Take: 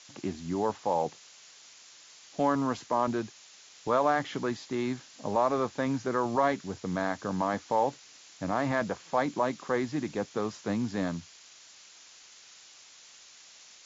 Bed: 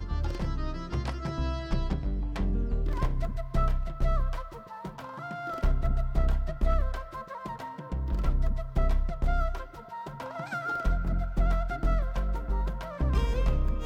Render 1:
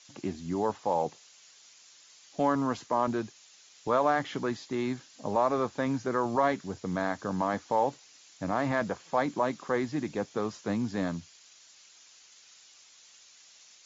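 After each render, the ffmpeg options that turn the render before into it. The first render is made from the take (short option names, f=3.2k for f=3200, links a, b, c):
-af "afftdn=nr=6:nf=-54"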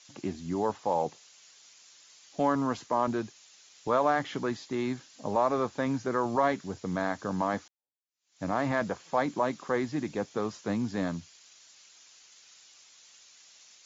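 -filter_complex "[0:a]asplit=2[a][b];[a]atrim=end=7.68,asetpts=PTS-STARTPTS,afade=t=out:st=7.676:d=0.004:c=hsin[c];[b]atrim=start=7.68,asetpts=PTS-STARTPTS,afade=t=in:d=0.75:c=exp[d];[c][d]concat=n=2:v=0:a=1"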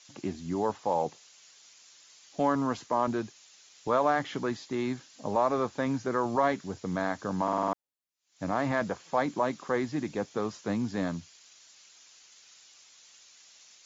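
-filter_complex "[0:a]asplit=7[a][b][c][d][e][f][g];[a]atrim=end=7.482[h];[b]atrim=start=7.428:end=7.482[i];[c]atrim=start=7.428:end=7.482[j];[d]atrim=start=7.428:end=7.482[k];[e]atrim=start=7.428:end=7.482[l];[f]atrim=start=7.428:end=7.482[m];[g]atrim=start=7.728[n];[h][i]acrossfade=d=0.004:c1=hsin:c2=hsin[o];[o][j]acrossfade=d=0.004:c1=hsin:c2=hsin[p];[p][k]acrossfade=d=0.004:c1=hsin:c2=hsin[q];[q][l]acrossfade=d=0.004:c1=hsin:c2=hsin[r];[r][m]acrossfade=d=0.004:c1=hsin:c2=hsin[s];[s][n]acrossfade=d=0.004:c1=hsin:c2=hsin"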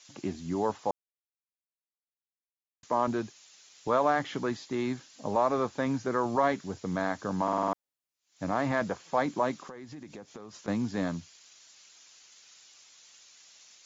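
-filter_complex "[0:a]asettb=1/sr,asplit=3[a][b][c];[a]atrim=end=9.624[d];[b]atrim=start=9.62:end=10.68,asetpts=PTS-STARTPTS,afade=t=in:d=0.004:c=qsin,afade=t=out:st=1.056:d=0.004:c=qsin,acompressor=threshold=-40dB:ratio=12:attack=3.2:release=140:knee=1:detection=peak[e];[c]atrim=start=10.676[f];[d][e]acrossfade=d=0.004:c1=hsin:c2=qsin[g];[g][f]acrossfade=d=0.004:c1=qsin:c2=hsin,asplit=3[h][i][j];[h]atrim=end=0.91,asetpts=PTS-STARTPTS,afade=t=out:st=0.906:d=0.004:c=hsin[k];[i]atrim=start=0.91:end=2.83,asetpts=PTS-STARTPTS,volume=0[l];[j]atrim=start=2.83,asetpts=PTS-STARTPTS,afade=t=in:d=0.004:c=hsin[m];[k][l][m]concat=n=3:v=0:a=1"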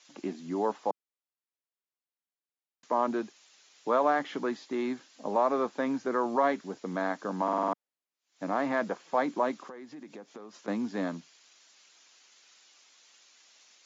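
-af "highpass=f=210:w=0.5412,highpass=f=210:w=1.3066,aemphasis=mode=reproduction:type=cd"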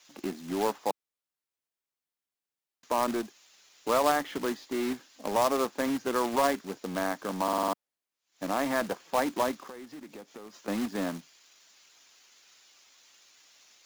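-af "acrusher=bits=2:mode=log:mix=0:aa=0.000001"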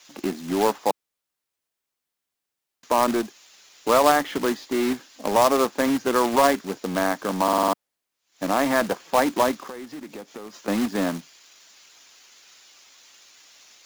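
-af "volume=7.5dB"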